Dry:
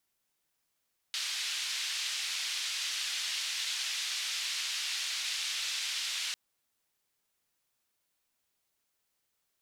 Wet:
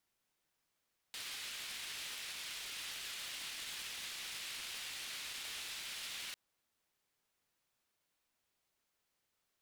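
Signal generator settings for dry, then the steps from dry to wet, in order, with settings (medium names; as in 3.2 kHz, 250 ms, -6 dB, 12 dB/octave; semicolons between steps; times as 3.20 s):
noise band 3–4 kHz, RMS -35 dBFS 5.20 s
self-modulated delay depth 0.082 ms; treble shelf 5.1 kHz -6.5 dB; peak limiter -35.5 dBFS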